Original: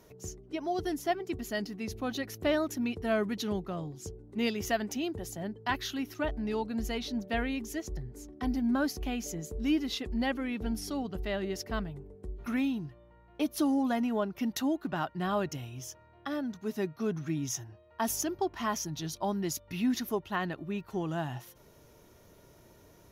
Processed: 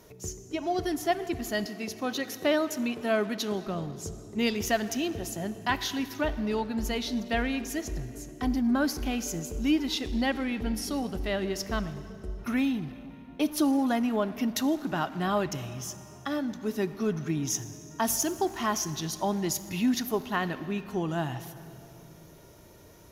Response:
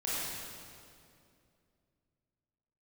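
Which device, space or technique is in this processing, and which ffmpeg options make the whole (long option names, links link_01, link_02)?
saturated reverb return: -filter_complex "[0:a]asplit=2[link_01][link_02];[1:a]atrim=start_sample=2205[link_03];[link_02][link_03]afir=irnorm=-1:irlink=0,asoftclip=type=tanh:threshold=-26.5dB,volume=-14.5dB[link_04];[link_01][link_04]amix=inputs=2:normalize=0,asettb=1/sr,asplit=3[link_05][link_06][link_07];[link_05]atrim=end=1.674[link_08];[link_06]atrim=start=1.67:end=3.67,asetpts=PTS-STARTPTS,afade=type=in:duration=0.004:curve=qsin,afade=type=out:start_time=1.996:duration=0.004:curve=qsin,highpass=210[link_09];[link_07]atrim=start=3.666[link_10];[link_08][link_09]acrossfade=duration=0.004:curve1=hsin:curve2=qsin[link_11];[link_11][link_10]acrossfade=duration=0.004:curve1=qsin:curve2=hsin,equalizer=frequency=8700:width_type=o:width=2.6:gain=2.5,volume=2.5dB"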